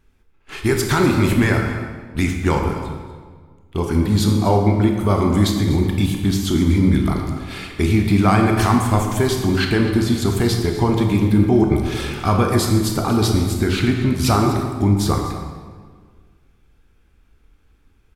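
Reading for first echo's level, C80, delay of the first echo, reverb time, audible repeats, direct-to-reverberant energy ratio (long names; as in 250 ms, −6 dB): −14.5 dB, 5.0 dB, 247 ms, 1.7 s, 1, 1.5 dB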